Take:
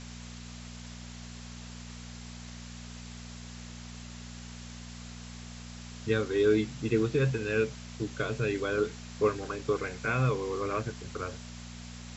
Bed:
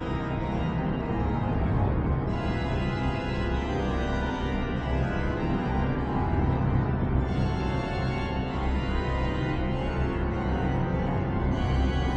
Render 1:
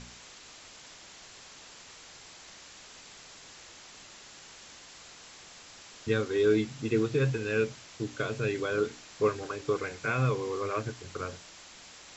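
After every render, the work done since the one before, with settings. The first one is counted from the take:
hum removal 60 Hz, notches 5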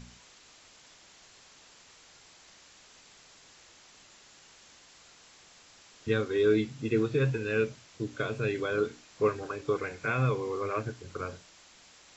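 noise reduction from a noise print 6 dB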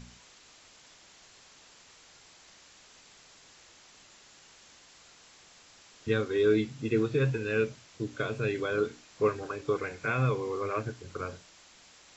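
no processing that can be heard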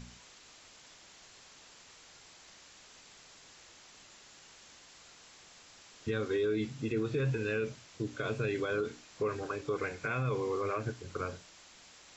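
brickwall limiter −24 dBFS, peak gain reduction 9 dB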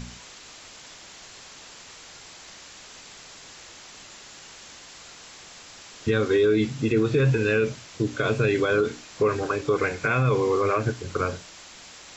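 level +11 dB

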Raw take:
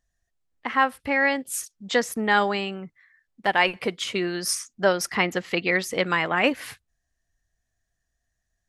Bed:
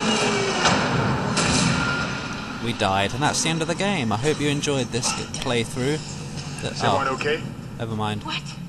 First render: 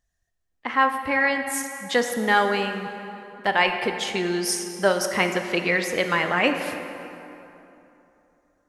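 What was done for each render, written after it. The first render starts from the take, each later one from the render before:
dense smooth reverb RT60 3.1 s, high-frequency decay 0.6×, DRR 5.5 dB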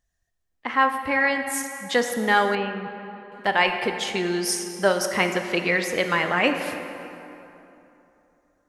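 0:02.55–0:03.32: high-frequency loss of the air 290 metres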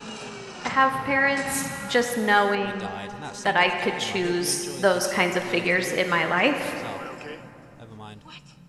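mix in bed −16 dB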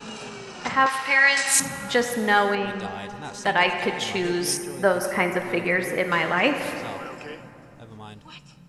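0:00.86–0:01.60: meter weighting curve ITU-R 468
0:04.57–0:06.12: flat-topped bell 4,700 Hz −9.5 dB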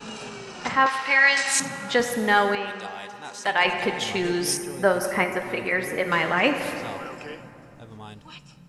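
0:00.77–0:02.00: band-pass filter 140–7,400 Hz
0:02.55–0:03.65: high-pass filter 590 Hz 6 dB per octave
0:05.24–0:06.07: notch comb filter 170 Hz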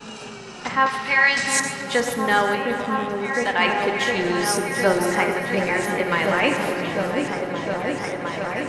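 feedback delay that plays each chunk backwards 202 ms, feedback 59%, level −10.5 dB
echo whose low-pass opens from repeat to repeat 710 ms, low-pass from 400 Hz, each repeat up 1 octave, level 0 dB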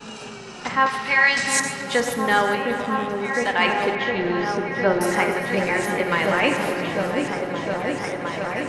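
0:03.95–0:05.01: high-frequency loss of the air 230 metres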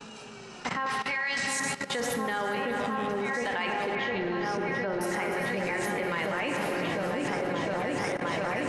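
brickwall limiter −12 dBFS, peak gain reduction 7 dB
output level in coarse steps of 15 dB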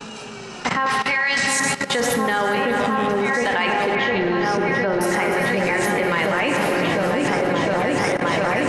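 level +10 dB

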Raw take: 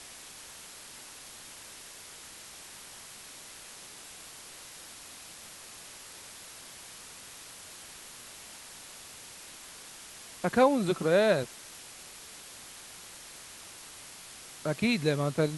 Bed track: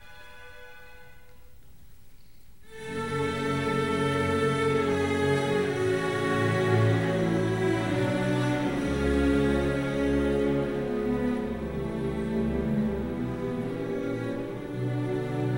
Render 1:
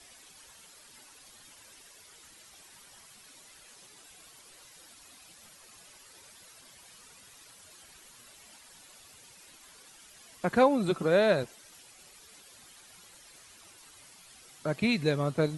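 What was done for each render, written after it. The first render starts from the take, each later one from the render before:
broadband denoise 11 dB, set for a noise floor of −48 dBFS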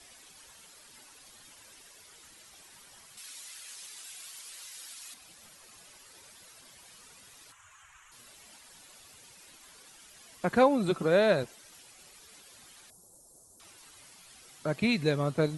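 0:03.17–0:05.14: tilt shelving filter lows −9 dB
0:07.52–0:08.12: drawn EQ curve 120 Hz 0 dB, 200 Hz −23 dB, 360 Hz −18 dB, 550 Hz −15 dB, 1,100 Hz +7 dB, 2,900 Hz −1 dB, 4,700 Hz −19 dB, 6,800 Hz 0 dB, 10,000 Hz −14 dB
0:12.90–0:13.60: Chebyshev band-stop filter 630–8,000 Hz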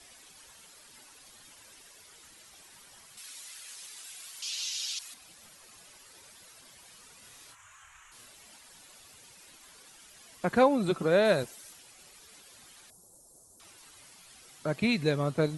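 0:04.42–0:04.99: flat-topped bell 4,100 Hz +15 dB
0:07.19–0:08.26: double-tracking delay 28 ms −3.5 dB
0:11.25–0:11.73: high-shelf EQ 7,000 Hz +9.5 dB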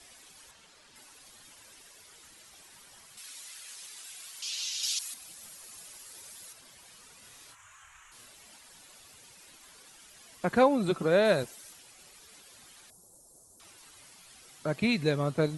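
0:00.51–0:00.96: high-frequency loss of the air 63 metres
0:04.83–0:06.53: high-shelf EQ 6,000 Hz +10.5 dB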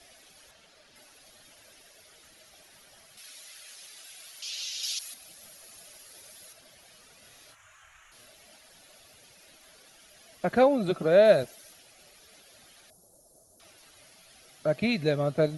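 thirty-one-band graphic EQ 630 Hz +9 dB, 1,000 Hz −7 dB, 8,000 Hz −10 dB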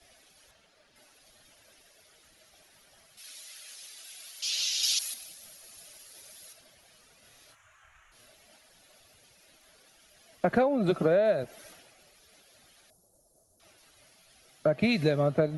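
downward compressor 20 to 1, threshold −27 dBFS, peak gain reduction 14.5 dB
multiband upward and downward expander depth 70%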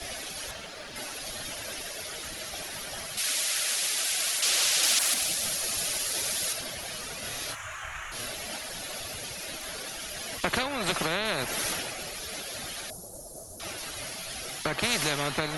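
every bin compressed towards the loudest bin 4 to 1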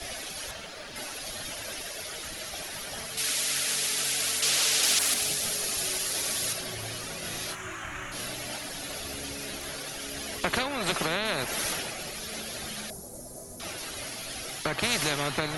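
mix in bed track −20 dB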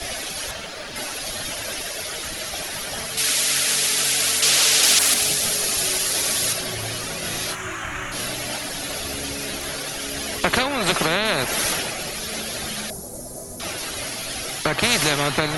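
level +8 dB

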